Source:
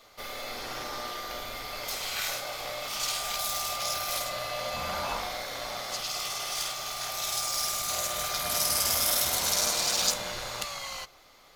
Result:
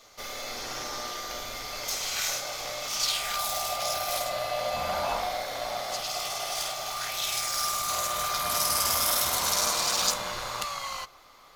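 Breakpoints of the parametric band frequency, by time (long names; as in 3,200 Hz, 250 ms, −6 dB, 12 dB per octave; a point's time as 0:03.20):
parametric band +8 dB 0.56 octaves
0:02.98 6,200 Hz
0:03.52 690 Hz
0:06.87 690 Hz
0:07.19 3,500 Hz
0:07.70 1,100 Hz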